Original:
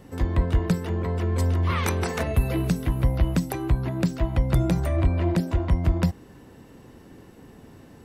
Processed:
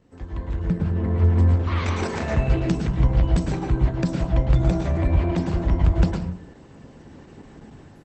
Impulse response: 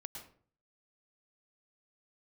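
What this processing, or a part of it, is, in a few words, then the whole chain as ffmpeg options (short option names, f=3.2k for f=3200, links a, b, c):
speakerphone in a meeting room: -filter_complex "[0:a]asplit=3[a][b][c];[a]afade=t=out:st=0.6:d=0.02[d];[b]bass=f=250:g=9,treble=f=4k:g=-13,afade=t=in:st=0.6:d=0.02,afade=t=out:st=1.55:d=0.02[e];[c]afade=t=in:st=1.55:d=0.02[f];[d][e][f]amix=inputs=3:normalize=0[g];[1:a]atrim=start_sample=2205[h];[g][h]afir=irnorm=-1:irlink=0,asplit=2[i][j];[j]adelay=150,highpass=300,lowpass=3.4k,asoftclip=type=hard:threshold=-20dB,volume=-19dB[k];[i][k]amix=inputs=2:normalize=0,dynaudnorm=f=370:g=5:m=14.5dB,volume=-5.5dB" -ar 48000 -c:a libopus -b:a 12k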